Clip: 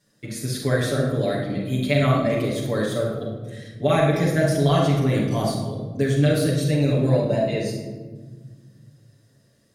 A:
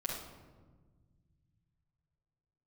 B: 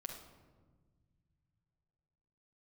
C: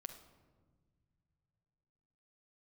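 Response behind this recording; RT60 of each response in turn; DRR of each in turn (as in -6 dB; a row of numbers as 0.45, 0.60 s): A; 1.4 s, 1.5 s, not exponential; -6.0, 0.0, 5.0 dB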